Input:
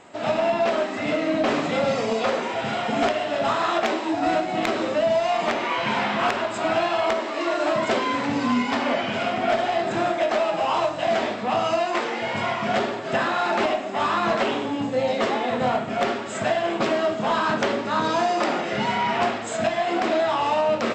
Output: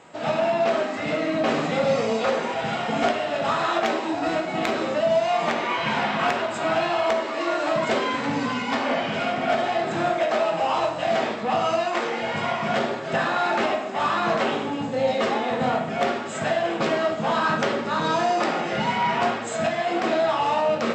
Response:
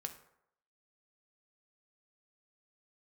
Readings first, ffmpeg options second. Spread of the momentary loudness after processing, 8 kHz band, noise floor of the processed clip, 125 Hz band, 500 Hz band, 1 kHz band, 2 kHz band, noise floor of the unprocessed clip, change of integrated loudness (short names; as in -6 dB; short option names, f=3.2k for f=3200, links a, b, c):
4 LU, -0.5 dB, -30 dBFS, +1.5 dB, -0.5 dB, -0.5 dB, 0.0 dB, -30 dBFS, -0.5 dB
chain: -filter_complex "[0:a]highpass=44[a];[1:a]atrim=start_sample=2205[b];[a][b]afir=irnorm=-1:irlink=0,volume=2dB"